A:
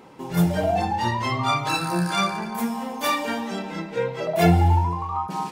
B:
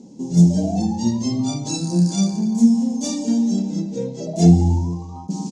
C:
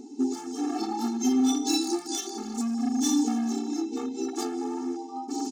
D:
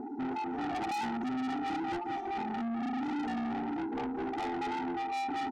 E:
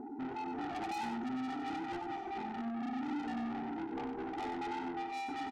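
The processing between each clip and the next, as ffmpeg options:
-af "firequalizer=gain_entry='entry(120,0);entry(220,15);entry(370,0);entry(830,-10);entry(1200,-26);entry(2300,-19);entry(4200,-1);entry(6500,13);entry(13000,-28)':delay=0.05:min_phase=1"
-af "acompressor=threshold=0.126:ratio=5,asoftclip=type=hard:threshold=0.0891,afftfilt=real='re*eq(mod(floor(b*sr/1024/230),2),1)':imag='im*eq(mod(floor(b*sr/1024/230),2),1)':win_size=1024:overlap=0.75,volume=1.58"
-filter_complex "[0:a]asplit=2[s0][s1];[s1]acompressor=threshold=0.02:ratio=6,volume=0.794[s2];[s0][s2]amix=inputs=2:normalize=0,lowpass=f=850:t=q:w=4.9,asoftclip=type=tanh:threshold=0.0316,volume=0.75"
-af "aecho=1:1:94:0.422,volume=0.562"

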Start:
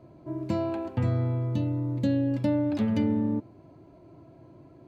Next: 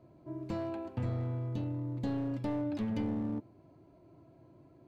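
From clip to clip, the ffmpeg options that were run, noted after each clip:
-af "aeval=exprs='clip(val(0),-1,0.0596)':c=same,volume=0.422"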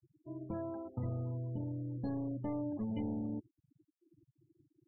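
-af "afftfilt=real='re*gte(hypot(re,im),0.01)':imag='im*gte(hypot(re,im),0.01)':win_size=1024:overlap=0.75,volume=0.668"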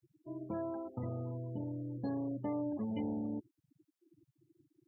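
-af "highpass=f=210:p=1,volume=1.41"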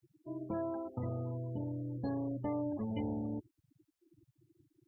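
-af "asubboost=boost=6:cutoff=81,volume=1.26"

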